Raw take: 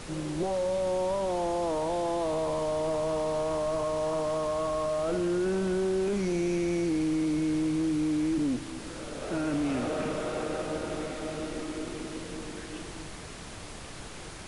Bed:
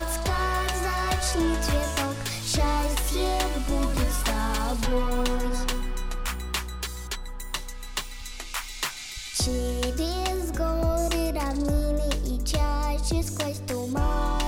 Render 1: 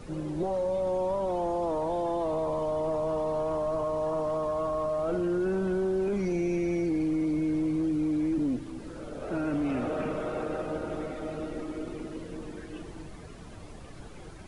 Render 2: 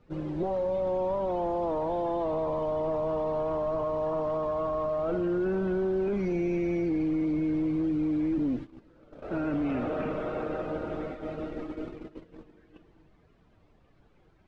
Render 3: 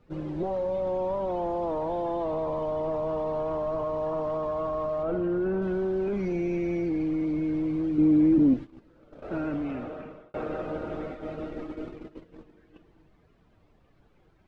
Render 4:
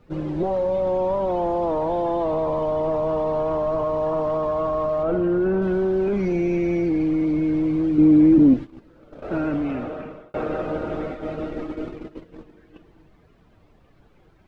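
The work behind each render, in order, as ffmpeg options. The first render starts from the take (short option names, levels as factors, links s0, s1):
-af "afftdn=nr=12:nf=-42"
-af "lowpass=3500,agate=range=0.141:threshold=0.0158:ratio=16:detection=peak"
-filter_complex "[0:a]asettb=1/sr,asplit=3[s0][s1][s2];[s0]atrim=end=5.034[s3];[s1]atrim=start=5.03:end=5.62,asetpts=PTS-STARTPTS,afade=t=in:d=0.004:c=qsin,afade=t=out:st=0.586:d=0.004:c=qsin,aemphasis=mode=reproduction:type=75fm[s4];[s2]atrim=start=5.616[s5];[s3][s4]acrossfade=d=0.004:c1=hsin:c2=qsin[s6];[s6][s5]acrossfade=d=0.004:c1=qsin:c2=hsin,asettb=1/sr,asplit=3[s7][s8][s9];[s7]atrim=end=7.984[s10];[s8]atrim=start=7.98:end=8.54,asetpts=PTS-STARTPTS,afade=t=in:d=0.004:c=qsin,afade=t=out:st=0.556:d=0.004:c=qsin,equalizer=f=240:w=0.44:g=8.5[s11];[s9]atrim=start=8.536[s12];[s10][s11]acrossfade=d=0.004:c1=hsin:c2=qsin[s13];[s13][s12]acrossfade=d=0.004:c1=qsin:c2=hsin,asplit=2[s14][s15];[s14]atrim=end=10.34,asetpts=PTS-STARTPTS,afade=t=out:st=9.41:d=0.93[s16];[s15]atrim=start=10.34,asetpts=PTS-STARTPTS,afade=t=in:d=0.004:c=hsin[s17];[s16][s17]concat=n=2:v=0:a=1"
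-af "volume=2.11"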